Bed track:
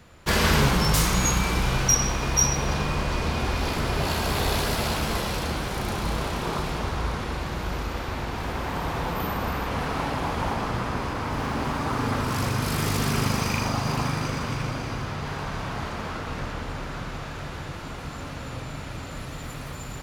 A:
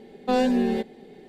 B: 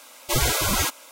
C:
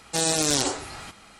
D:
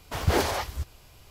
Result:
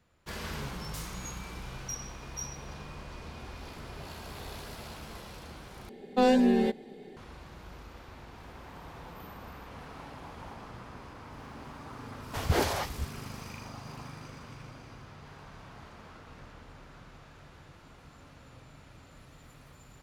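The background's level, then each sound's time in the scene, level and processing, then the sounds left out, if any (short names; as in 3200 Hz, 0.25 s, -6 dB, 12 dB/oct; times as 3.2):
bed track -18 dB
5.89 replace with A -1 dB
12.22 add D -3.5 dB
not used: B, C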